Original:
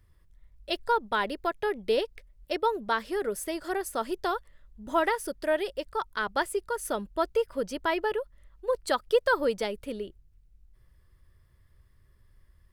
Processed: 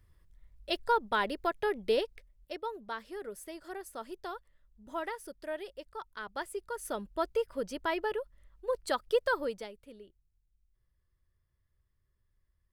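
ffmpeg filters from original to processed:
-af "volume=1.78,afade=t=out:st=1.88:d=0.71:silence=0.334965,afade=t=in:st=6.27:d=0.85:silence=0.446684,afade=t=out:st=9.25:d=0.49:silence=0.266073"

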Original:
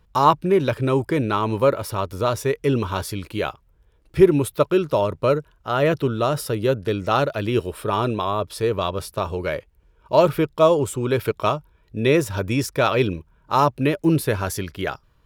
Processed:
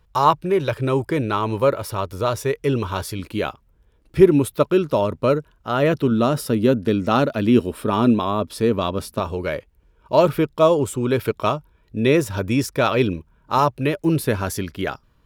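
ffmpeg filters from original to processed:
-af "asetnsamples=n=441:p=0,asendcmd='0.81 equalizer g -1.5;3.19 equalizer g 7.5;6.11 equalizer g 14.5;9.2 equalizer g 5;13.58 equalizer g -4;14.24 equalizer g 7.5',equalizer=f=240:t=o:w=0.54:g=-9.5"

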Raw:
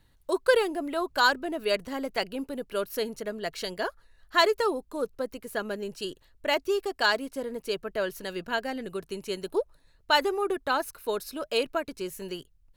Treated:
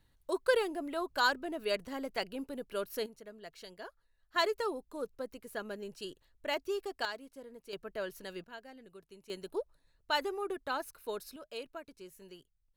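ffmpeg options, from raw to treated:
-af "asetnsamples=n=441:p=0,asendcmd='3.06 volume volume -16dB;4.36 volume volume -8.5dB;7.05 volume volume -16dB;7.73 volume volume -9dB;8.44 volume volume -19dB;9.3 volume volume -9dB;11.36 volume volume -16dB',volume=0.473"

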